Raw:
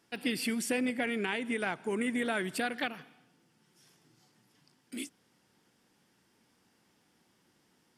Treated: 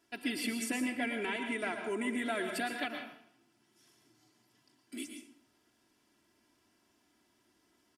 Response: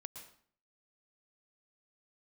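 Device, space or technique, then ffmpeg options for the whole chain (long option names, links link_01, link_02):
microphone above a desk: -filter_complex "[0:a]aecho=1:1:3:0.73[link_01];[1:a]atrim=start_sample=2205[link_02];[link_01][link_02]afir=irnorm=-1:irlink=0,volume=1dB"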